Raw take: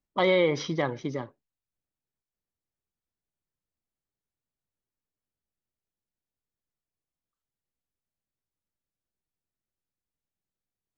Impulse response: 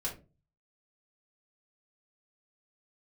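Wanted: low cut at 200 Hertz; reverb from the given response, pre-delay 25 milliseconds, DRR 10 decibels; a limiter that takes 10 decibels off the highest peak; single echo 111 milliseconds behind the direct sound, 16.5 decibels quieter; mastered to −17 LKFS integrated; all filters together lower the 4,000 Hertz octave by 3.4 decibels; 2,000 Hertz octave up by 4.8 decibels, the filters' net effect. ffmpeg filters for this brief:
-filter_complex "[0:a]highpass=200,equalizer=frequency=2000:width_type=o:gain=7,equalizer=frequency=4000:width_type=o:gain=-7.5,alimiter=limit=-21dB:level=0:latency=1,aecho=1:1:111:0.15,asplit=2[link_01][link_02];[1:a]atrim=start_sample=2205,adelay=25[link_03];[link_02][link_03]afir=irnorm=-1:irlink=0,volume=-12dB[link_04];[link_01][link_04]amix=inputs=2:normalize=0,volume=15dB"

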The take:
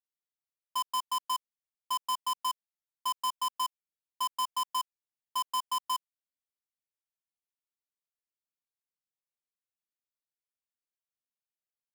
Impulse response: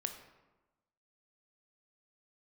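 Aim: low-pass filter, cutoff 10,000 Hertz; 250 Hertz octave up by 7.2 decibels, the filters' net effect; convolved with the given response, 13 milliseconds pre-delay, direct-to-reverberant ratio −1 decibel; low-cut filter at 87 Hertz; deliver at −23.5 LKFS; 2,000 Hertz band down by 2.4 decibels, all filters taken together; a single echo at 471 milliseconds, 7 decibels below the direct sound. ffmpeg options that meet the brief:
-filter_complex "[0:a]highpass=87,lowpass=10000,equalizer=frequency=250:width_type=o:gain=7.5,equalizer=frequency=2000:width_type=o:gain=-3,aecho=1:1:471:0.447,asplit=2[link_01][link_02];[1:a]atrim=start_sample=2205,adelay=13[link_03];[link_02][link_03]afir=irnorm=-1:irlink=0,volume=1.5dB[link_04];[link_01][link_04]amix=inputs=2:normalize=0,volume=8dB"

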